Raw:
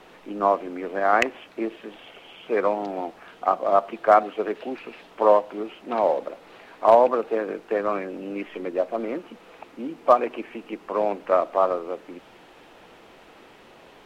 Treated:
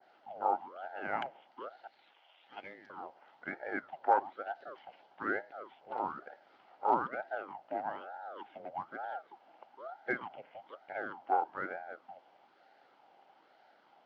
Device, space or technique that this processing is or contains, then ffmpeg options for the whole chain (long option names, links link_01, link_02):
voice changer toy: -filter_complex "[0:a]asettb=1/sr,asplit=3[link_01][link_02][link_03];[link_01]atrim=end=1.874[link_04];[link_02]atrim=start=1.87:end=2.9,asetpts=PTS-STARTPTS,afade=type=in:duration=0.004:curve=qsin,afade=type=out:start_time=1.026:duration=0.004:curve=qsin,highpass=frequency=820:width=0.5412,highpass=frequency=820:width=1.3066[link_05];[link_03]atrim=start=2.896[link_06];[link_04][link_05]acrossfade=duration=0.004:curve1=hsin:curve2=qsin[link_07];[link_07][link_06]acrossfade=duration=0.004:curve1=qsin:curve2=hsin,aeval=exprs='val(0)*sin(2*PI*650*n/s+650*0.75/1.1*sin(2*PI*1.1*n/s))':channel_layout=same,highpass=420,equalizer=frequency=450:width_type=q:width=4:gain=-5,equalizer=frequency=800:width_type=q:width=4:gain=9,equalizer=frequency=1100:width_type=q:width=4:gain=-9,equalizer=frequency=1800:width_type=q:width=4:gain=-8,equalizer=frequency=2500:width_type=q:width=4:gain=-9,equalizer=frequency=3700:width_type=q:width=4:gain=-9,lowpass=frequency=4400:width=0.5412,lowpass=frequency=4400:width=1.3066,adynamicequalizer=threshold=0.00708:dfrequency=3100:dqfactor=0.73:tfrequency=3100:tqfactor=0.73:attack=5:release=100:ratio=0.375:range=1.5:mode=cutabove:tftype=bell,volume=-9dB"